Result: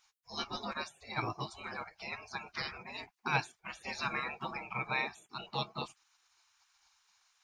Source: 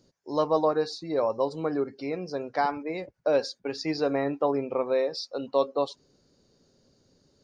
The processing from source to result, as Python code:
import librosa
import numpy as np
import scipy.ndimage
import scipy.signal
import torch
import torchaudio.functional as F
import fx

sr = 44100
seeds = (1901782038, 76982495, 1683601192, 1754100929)

y = fx.small_body(x, sr, hz=(220.0, 540.0, 2300.0), ring_ms=20, db=14)
y = fx.spec_gate(y, sr, threshold_db=-30, keep='weak')
y = F.gain(torch.from_numpy(y), 4.0).numpy()